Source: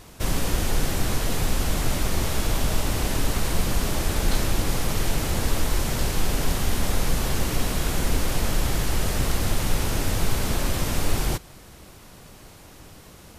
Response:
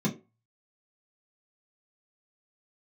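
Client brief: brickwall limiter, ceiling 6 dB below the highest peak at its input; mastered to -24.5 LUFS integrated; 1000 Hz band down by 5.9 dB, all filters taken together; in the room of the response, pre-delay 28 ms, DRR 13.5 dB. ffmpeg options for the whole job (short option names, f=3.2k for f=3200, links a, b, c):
-filter_complex "[0:a]equalizer=f=1k:t=o:g=-8,alimiter=limit=-15.5dB:level=0:latency=1,asplit=2[a][b];[1:a]atrim=start_sample=2205,adelay=28[c];[b][c]afir=irnorm=-1:irlink=0,volume=-20.5dB[d];[a][d]amix=inputs=2:normalize=0,volume=2.5dB"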